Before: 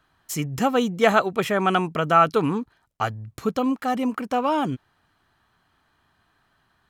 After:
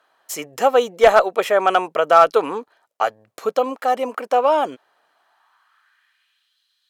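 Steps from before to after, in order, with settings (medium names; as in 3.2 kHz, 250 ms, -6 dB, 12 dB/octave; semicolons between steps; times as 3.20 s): high-pass sweep 540 Hz -> 3.8 kHz, 5.08–6.58 s; one-sided clip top -6.5 dBFS; trim +2 dB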